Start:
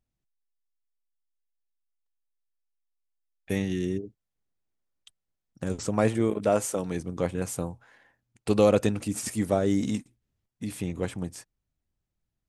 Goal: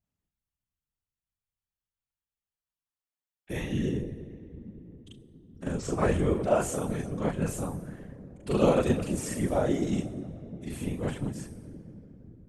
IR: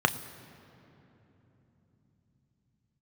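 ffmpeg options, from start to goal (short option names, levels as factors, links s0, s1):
-filter_complex "[0:a]asplit=2[s0][s1];[1:a]atrim=start_sample=2205,highshelf=f=6300:g=7.5,adelay=40[s2];[s1][s2]afir=irnorm=-1:irlink=0,volume=0.398[s3];[s0][s3]amix=inputs=2:normalize=0,afftfilt=real='hypot(re,im)*cos(2*PI*random(0))':imag='hypot(re,im)*sin(2*PI*random(1))':win_size=512:overlap=0.75,volume=0.841"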